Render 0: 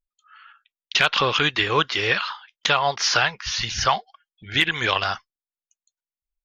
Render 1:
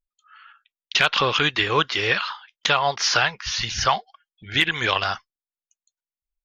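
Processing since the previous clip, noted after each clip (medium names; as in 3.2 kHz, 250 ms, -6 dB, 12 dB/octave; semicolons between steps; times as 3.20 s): no audible change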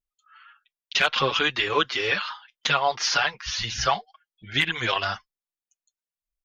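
endless flanger 6.2 ms +2.7 Hz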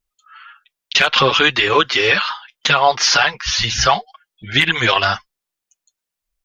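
loudness maximiser +11.5 dB; trim -1 dB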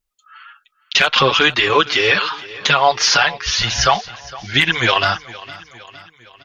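feedback delay 460 ms, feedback 54%, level -19 dB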